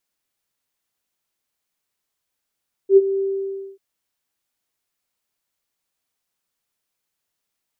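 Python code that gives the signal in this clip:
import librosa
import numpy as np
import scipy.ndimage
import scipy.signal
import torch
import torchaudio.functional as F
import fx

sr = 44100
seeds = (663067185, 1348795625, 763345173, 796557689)

y = fx.adsr_tone(sr, wave='sine', hz=390.0, attack_ms=78.0, decay_ms=37.0, sustain_db=-13.5, held_s=0.31, release_ms=579.0, level_db=-5.0)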